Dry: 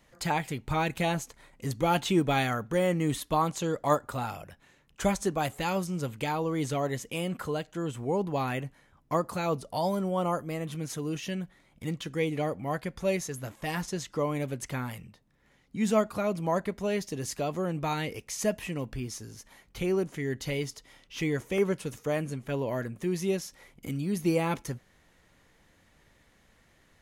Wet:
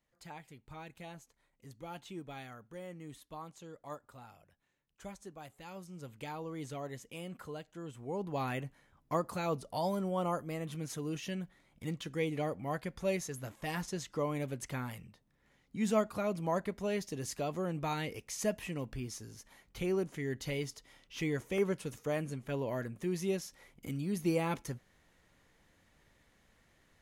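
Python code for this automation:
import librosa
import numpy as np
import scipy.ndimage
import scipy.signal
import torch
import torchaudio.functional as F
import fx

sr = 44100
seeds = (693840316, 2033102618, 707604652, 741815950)

y = fx.gain(x, sr, db=fx.line((5.58, -20.0), (6.22, -12.0), (7.98, -12.0), (8.44, -5.0)))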